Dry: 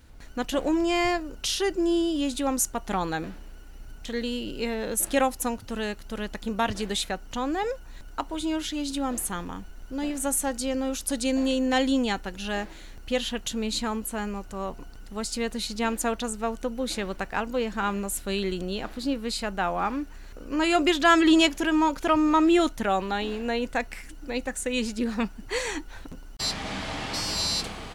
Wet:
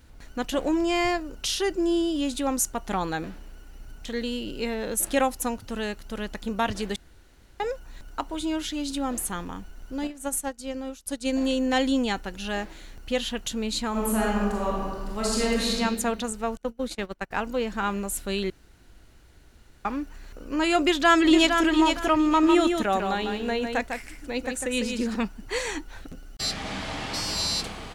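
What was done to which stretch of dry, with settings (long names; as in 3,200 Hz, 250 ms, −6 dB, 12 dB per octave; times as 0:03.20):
0:06.96–0:07.60: fill with room tone
0:10.07–0:11.41: expander for the loud parts 2.5 to 1, over −40 dBFS
0:13.90–0:15.75: thrown reverb, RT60 1.6 s, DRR −5.5 dB
0:16.57–0:17.31: noise gate −31 dBFS, range −25 dB
0:18.50–0:19.85: fill with room tone
0:20.78–0:21.62: delay throw 460 ms, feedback 25%, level −5.5 dB
0:22.28–0:25.16: single-tap delay 151 ms −5.5 dB
0:26.01–0:26.57: Butterworth band-reject 970 Hz, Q 3.9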